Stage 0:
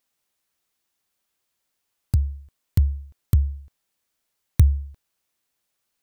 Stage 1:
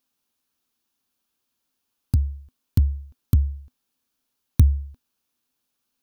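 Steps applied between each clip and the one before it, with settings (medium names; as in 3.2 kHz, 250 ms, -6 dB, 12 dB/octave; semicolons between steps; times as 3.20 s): graphic EQ with 31 bands 250 Hz +11 dB, 630 Hz -5 dB, 2 kHz -8 dB, 8 kHz -5 dB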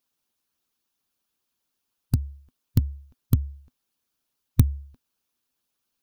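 harmonic-percussive split harmonic -11 dB; trim +2 dB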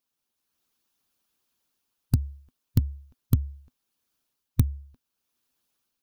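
level rider gain up to 7 dB; trim -4 dB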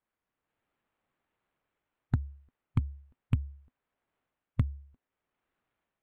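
decimation joined by straight lines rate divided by 8×; trim -6 dB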